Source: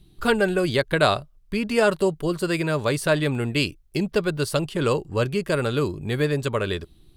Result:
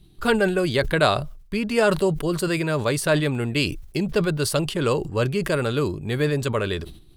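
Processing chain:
level that may fall only so fast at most 86 dB per second

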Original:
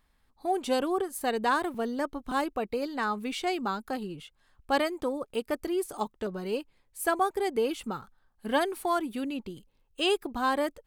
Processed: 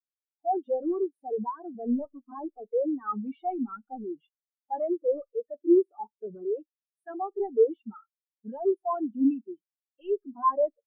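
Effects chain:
mid-hump overdrive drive 35 dB, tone 6,900 Hz, clips at −12.5 dBFS
four-comb reverb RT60 0.54 s, combs from 26 ms, DRR 14.5 dB
every bin expanded away from the loudest bin 4 to 1

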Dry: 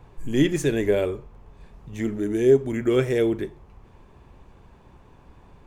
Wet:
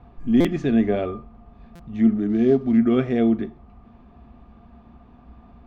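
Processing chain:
0:02.29–0:02.78: variable-slope delta modulation 64 kbit/s
low-pass filter 4,500 Hz 24 dB per octave
parametric band 61 Hz +12 dB 0.46 octaves
hollow resonant body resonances 230/700/1,200 Hz, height 18 dB, ringing for 85 ms
buffer that repeats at 0:00.40/0:01.75, samples 256, times 7
level −4 dB

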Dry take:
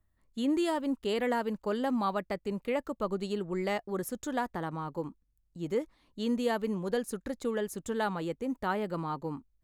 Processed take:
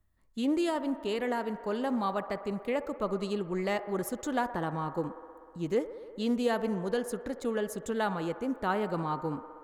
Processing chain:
speech leveller within 4 dB 2 s
on a send: delay with a band-pass on its return 62 ms, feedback 83%, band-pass 840 Hz, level −13 dB
on the sum: highs frequency-modulated by the lows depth 0.11 ms

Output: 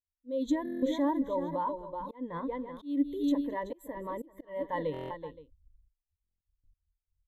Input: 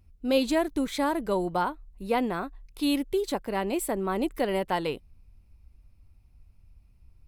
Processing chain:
multi-tap delay 214/378/520 ms −18/−9/−15 dB
brickwall limiter −21.5 dBFS, peak gain reduction 9 dB
0:02.18–0:02.99: low-pass filter 11,000 Hz 24 dB per octave
noise gate with hold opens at −45 dBFS
EQ curve with evenly spaced ripples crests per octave 1.1, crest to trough 13 dB
volume swells 243 ms
buffer that repeats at 0:00.64/0:04.92/0:06.22, samples 1,024, times 7
every bin expanded away from the loudest bin 1.5 to 1
level −2 dB

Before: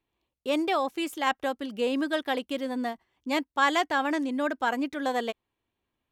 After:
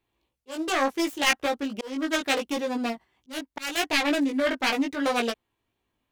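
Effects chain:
phase distortion by the signal itself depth 0.5 ms
chorus effect 0.76 Hz, delay 17 ms, depth 2 ms
volume swells 375 ms
level +7 dB

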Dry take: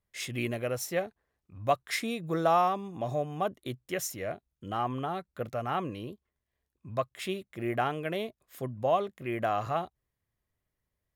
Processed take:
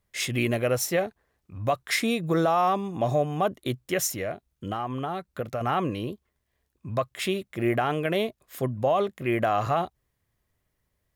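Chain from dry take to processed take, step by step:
brickwall limiter −22.5 dBFS, peak gain reduction 9 dB
0:04.09–0:05.61: downward compressor 4 to 1, threshold −36 dBFS, peak gain reduction 7.5 dB
level +8 dB

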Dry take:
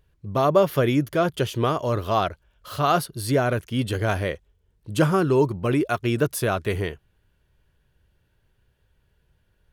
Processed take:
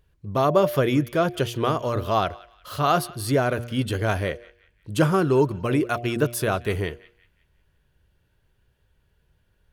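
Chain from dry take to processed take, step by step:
hum removal 118.6 Hz, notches 6
on a send: feedback echo with a band-pass in the loop 180 ms, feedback 42%, band-pass 2,500 Hz, level −19 dB

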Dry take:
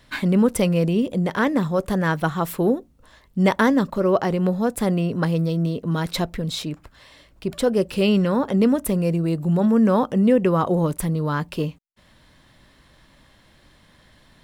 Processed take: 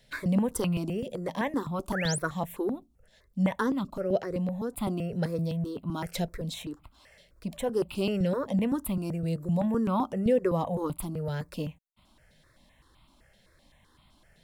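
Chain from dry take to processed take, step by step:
0:01.90–0:02.19: sound drawn into the spectrogram rise 850–11,000 Hz −28 dBFS
0:02.43–0:04.73: rotating-speaker cabinet horn 5 Hz
step-sequenced phaser 7.8 Hz 300–1,700 Hz
level −5 dB

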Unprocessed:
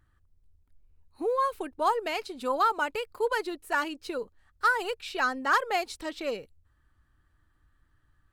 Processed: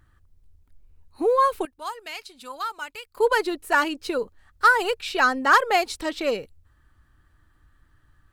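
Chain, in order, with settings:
0:01.65–0:03.17: guitar amp tone stack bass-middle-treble 5-5-5
level +7.5 dB

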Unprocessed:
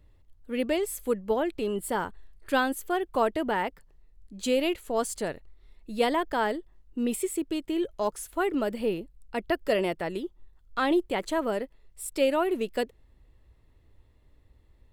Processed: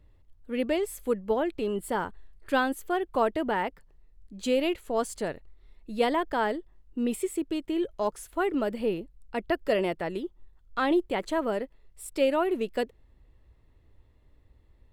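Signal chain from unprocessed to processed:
high-shelf EQ 4,700 Hz −6 dB

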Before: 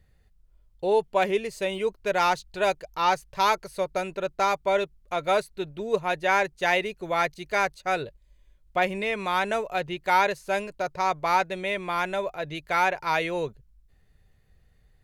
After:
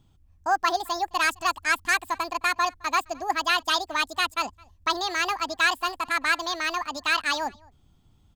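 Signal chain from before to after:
slap from a distant wall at 66 metres, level −26 dB
change of speed 1.8×

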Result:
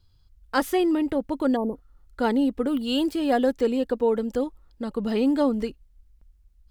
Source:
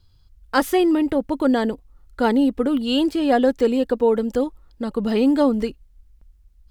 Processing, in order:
0:01.58–0:01.93: healed spectral selection 1,200–9,200 Hz after
0:02.67–0:03.52: high-shelf EQ 11,000 Hz +10 dB
level −4.5 dB

